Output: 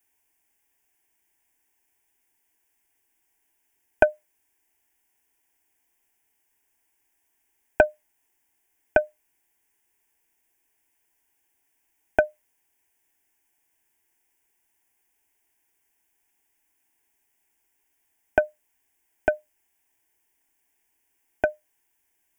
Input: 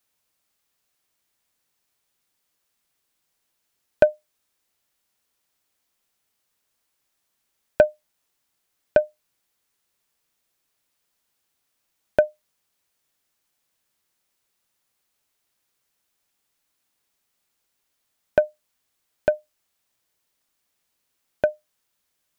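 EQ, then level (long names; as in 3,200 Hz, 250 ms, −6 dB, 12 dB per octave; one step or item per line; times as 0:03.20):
dynamic equaliser 1,300 Hz, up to +6 dB, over −32 dBFS, Q 0.97
phaser with its sweep stopped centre 830 Hz, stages 8
+4.5 dB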